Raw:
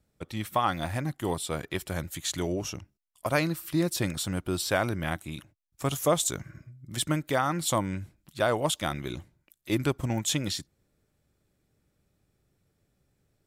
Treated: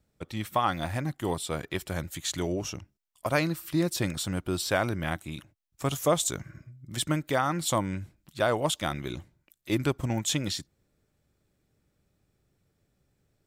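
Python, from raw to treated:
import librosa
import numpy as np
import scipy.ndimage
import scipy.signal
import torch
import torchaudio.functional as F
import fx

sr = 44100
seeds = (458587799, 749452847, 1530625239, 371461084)

y = fx.peak_eq(x, sr, hz=11000.0, db=-4.0, octaves=0.4)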